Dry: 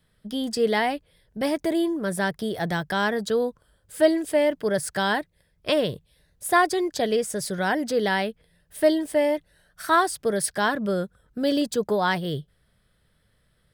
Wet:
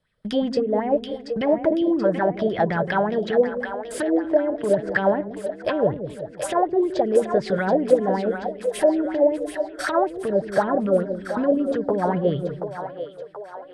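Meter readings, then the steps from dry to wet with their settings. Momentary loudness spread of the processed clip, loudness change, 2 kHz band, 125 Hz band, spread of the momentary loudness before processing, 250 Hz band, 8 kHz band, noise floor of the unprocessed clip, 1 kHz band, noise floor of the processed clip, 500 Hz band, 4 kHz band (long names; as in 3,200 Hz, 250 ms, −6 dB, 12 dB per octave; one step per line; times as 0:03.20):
10 LU, +2.0 dB, −3.0 dB, +3.5 dB, 11 LU, +3.0 dB, −8.0 dB, −67 dBFS, +0.5 dB, −41 dBFS, +4.5 dB, −7.5 dB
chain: treble cut that deepens with the level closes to 470 Hz, closed at −19.5 dBFS
noise gate −54 dBFS, range −18 dB
low-pass filter 8,800 Hz 12 dB per octave
in parallel at +3 dB: downward compressor, threshold −37 dBFS, peak gain reduction 18 dB
on the sum: brickwall limiter −19 dBFS, peak gain reduction 9 dB
on a send: echo with a time of its own for lows and highs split 440 Hz, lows 168 ms, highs 730 ms, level −7.5 dB
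on the sum: auto-filter bell 5.3 Hz 510–2,900 Hz +14 dB
level +1 dB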